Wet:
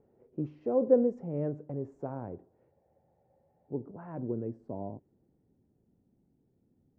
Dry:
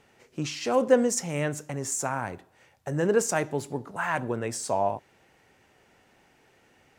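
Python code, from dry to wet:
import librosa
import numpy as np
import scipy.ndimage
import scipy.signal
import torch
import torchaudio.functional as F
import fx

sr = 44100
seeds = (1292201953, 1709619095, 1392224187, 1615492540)

y = fx.filter_sweep_lowpass(x, sr, from_hz=460.0, to_hz=230.0, start_s=3.22, end_s=5.89, q=1.4)
y = fx.spec_freeze(y, sr, seeds[0], at_s=2.75, hold_s=0.96)
y = F.gain(torch.from_numpy(y), -4.5).numpy()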